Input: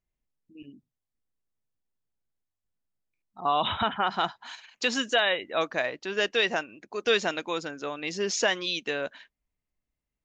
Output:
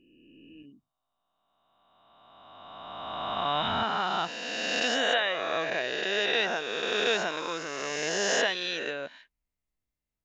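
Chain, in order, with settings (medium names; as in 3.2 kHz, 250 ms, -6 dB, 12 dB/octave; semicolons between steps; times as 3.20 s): reverse spectral sustain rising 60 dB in 2.50 s; trim -6.5 dB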